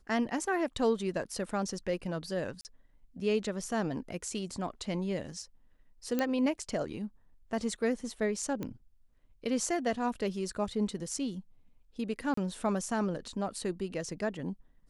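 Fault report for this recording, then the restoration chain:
2.61–2.65 gap 39 ms
6.19 pop -16 dBFS
8.63 pop -23 dBFS
12.34–12.37 gap 34 ms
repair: de-click; interpolate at 2.61, 39 ms; interpolate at 12.34, 34 ms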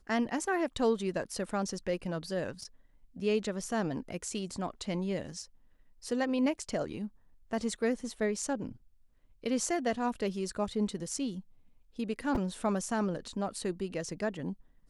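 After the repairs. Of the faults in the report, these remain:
none

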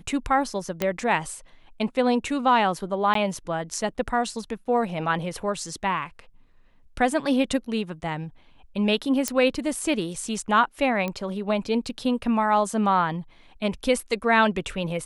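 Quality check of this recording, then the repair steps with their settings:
0.82 pop -9 dBFS
3.14–3.15 gap 13 ms
9.28 pop -8 dBFS
11.08 pop -16 dBFS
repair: de-click; interpolate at 3.14, 13 ms

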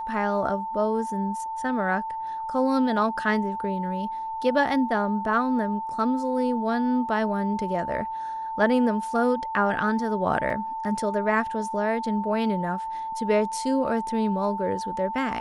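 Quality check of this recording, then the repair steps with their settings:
tone 890 Hz -29 dBFS
10.5 gap 3.2 ms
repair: notch 890 Hz, Q 30; interpolate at 10.5, 3.2 ms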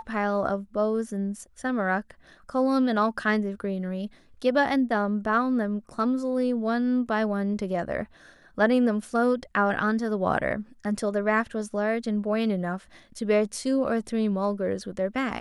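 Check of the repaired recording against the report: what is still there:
none

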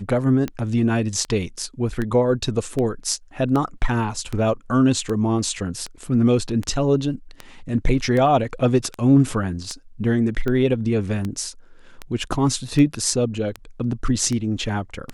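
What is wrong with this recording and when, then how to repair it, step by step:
tick 78 rpm -14 dBFS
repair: de-click

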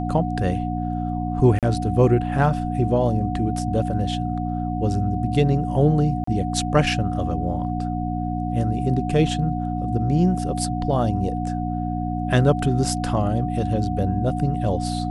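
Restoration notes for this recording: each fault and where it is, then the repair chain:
hum 60 Hz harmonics 5 -26 dBFS
tone 730 Hz -29 dBFS
1.59–1.63 gap 37 ms
6.24–6.27 gap 34 ms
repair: notch 730 Hz, Q 30; de-hum 60 Hz, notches 5; interpolate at 1.59, 37 ms; interpolate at 6.24, 34 ms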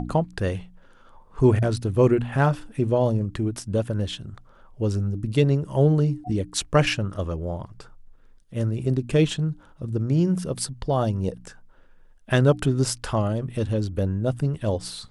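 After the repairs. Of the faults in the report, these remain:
none

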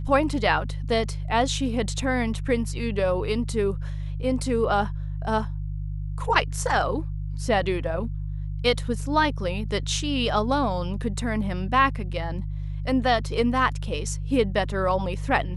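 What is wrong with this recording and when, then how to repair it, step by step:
hum 50 Hz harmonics 3 -30 dBFS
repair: de-hum 50 Hz, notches 3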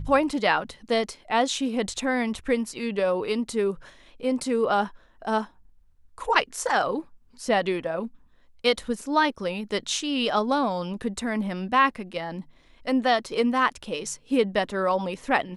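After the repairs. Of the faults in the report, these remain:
none

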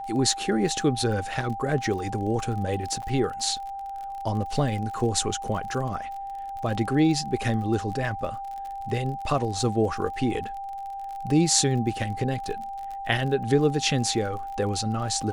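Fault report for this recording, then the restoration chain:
crackle 42/s -34 dBFS
tone 790 Hz -32 dBFS
3.02–3.03 gap 7.6 ms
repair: de-click; notch 790 Hz, Q 30; interpolate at 3.02, 7.6 ms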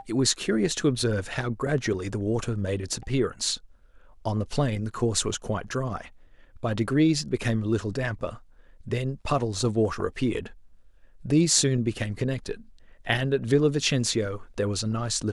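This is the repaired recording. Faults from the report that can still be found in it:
none

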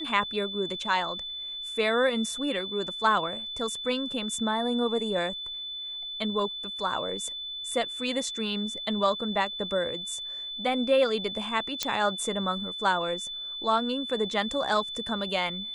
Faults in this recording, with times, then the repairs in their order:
tone 3500 Hz -34 dBFS
11.83 pop -10 dBFS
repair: de-click; notch 3500 Hz, Q 30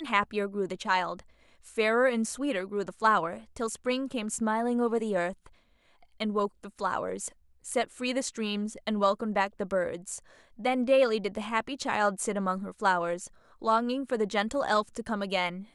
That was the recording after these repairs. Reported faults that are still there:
none

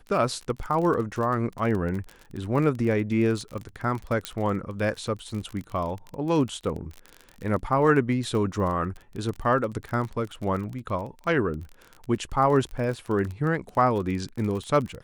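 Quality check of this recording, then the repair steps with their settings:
crackle 30/s -31 dBFS
4.25 pop -12 dBFS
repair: de-click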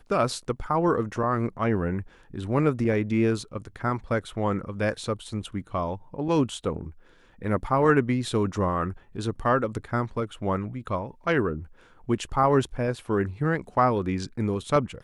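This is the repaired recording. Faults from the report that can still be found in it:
none

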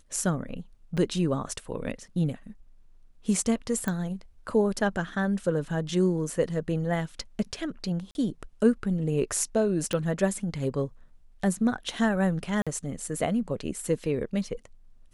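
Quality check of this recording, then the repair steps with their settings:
0.97–0.98 gap 5.8 ms
3.88 pop -16 dBFS
8.11–8.15 gap 41 ms
9.93 pop -15 dBFS
12.62–12.67 gap 46 ms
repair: de-click; interpolate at 0.97, 5.8 ms; interpolate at 8.11, 41 ms; interpolate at 12.62, 46 ms

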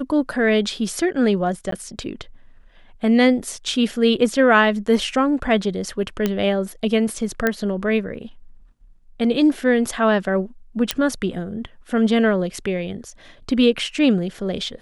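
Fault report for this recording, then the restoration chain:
1.71–1.72 gap 13 ms
6.26 pop -7 dBFS
7.47 pop -6 dBFS
10.91 pop -3 dBFS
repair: de-click; interpolate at 1.71, 13 ms

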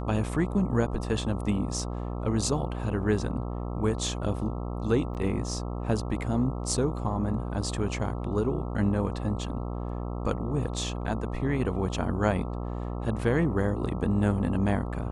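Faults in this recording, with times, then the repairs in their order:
buzz 60 Hz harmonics 22 -33 dBFS
5.14–5.15 gap 8.6 ms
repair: de-hum 60 Hz, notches 22; interpolate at 5.14, 8.6 ms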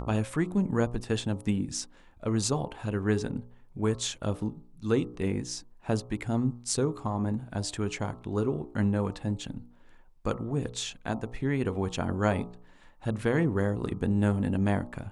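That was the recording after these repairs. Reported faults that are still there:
none

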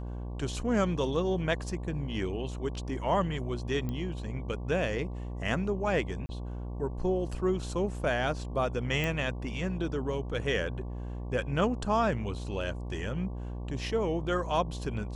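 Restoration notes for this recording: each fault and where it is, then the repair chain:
buzz 60 Hz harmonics 19 -37 dBFS
3.89 pop -23 dBFS
6.26–6.29 gap 30 ms
9.04 pop -18 dBFS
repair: de-click; de-hum 60 Hz, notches 19; interpolate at 6.26, 30 ms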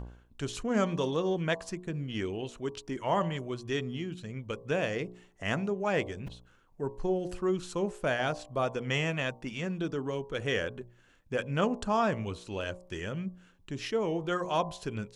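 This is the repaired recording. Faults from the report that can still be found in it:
3.89 pop

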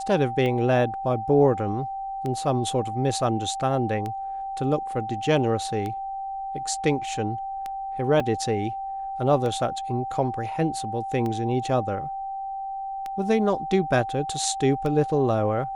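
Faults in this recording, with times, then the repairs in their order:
tick 33 1/3 rpm -18 dBFS
tone 780 Hz -29 dBFS
8.2 gap 2.8 ms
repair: de-click; notch 780 Hz, Q 30; interpolate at 8.2, 2.8 ms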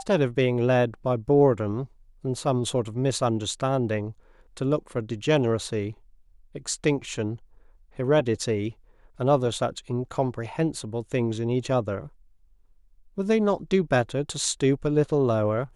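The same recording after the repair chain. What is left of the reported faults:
none

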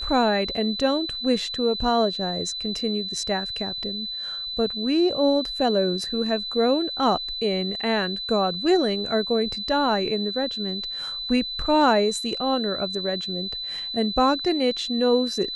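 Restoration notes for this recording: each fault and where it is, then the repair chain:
tone 4000 Hz -29 dBFS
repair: notch 4000 Hz, Q 30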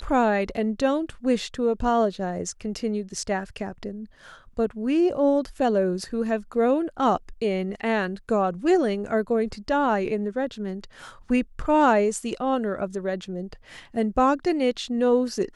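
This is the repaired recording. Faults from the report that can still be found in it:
none

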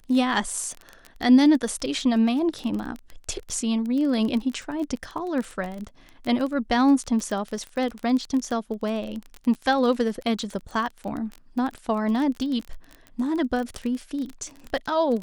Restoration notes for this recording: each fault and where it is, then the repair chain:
crackle 25/s -28 dBFS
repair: de-click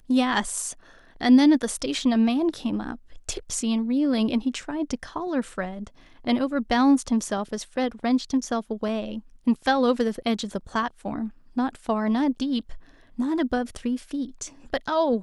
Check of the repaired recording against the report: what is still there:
none

